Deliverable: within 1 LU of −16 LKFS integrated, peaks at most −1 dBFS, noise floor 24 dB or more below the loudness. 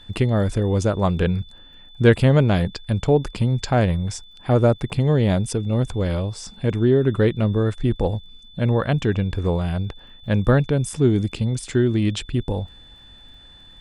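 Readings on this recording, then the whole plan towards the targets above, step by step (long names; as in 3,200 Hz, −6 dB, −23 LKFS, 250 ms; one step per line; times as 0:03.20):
crackle rate 23 per second; interfering tone 3,500 Hz; level of the tone −46 dBFS; integrated loudness −21.0 LKFS; sample peak −3.0 dBFS; target loudness −16.0 LKFS
→ click removal
notch filter 3,500 Hz, Q 30
level +5 dB
brickwall limiter −1 dBFS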